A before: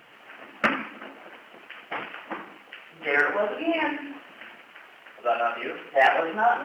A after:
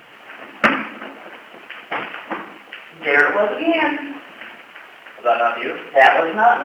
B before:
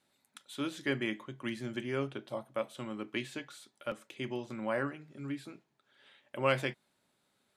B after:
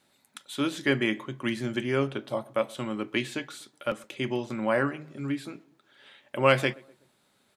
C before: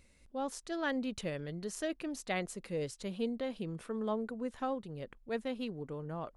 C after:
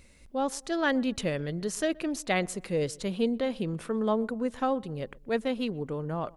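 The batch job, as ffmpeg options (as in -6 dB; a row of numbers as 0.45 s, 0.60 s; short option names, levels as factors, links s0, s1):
-filter_complex "[0:a]asplit=2[s0][s1];[s1]adelay=124,lowpass=f=1300:p=1,volume=0.0708,asplit=2[s2][s3];[s3]adelay=124,lowpass=f=1300:p=1,volume=0.48,asplit=2[s4][s5];[s5]adelay=124,lowpass=f=1300:p=1,volume=0.48[s6];[s0][s2][s4][s6]amix=inputs=4:normalize=0,volume=2.51"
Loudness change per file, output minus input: +8.0 LU, +8.0 LU, +8.0 LU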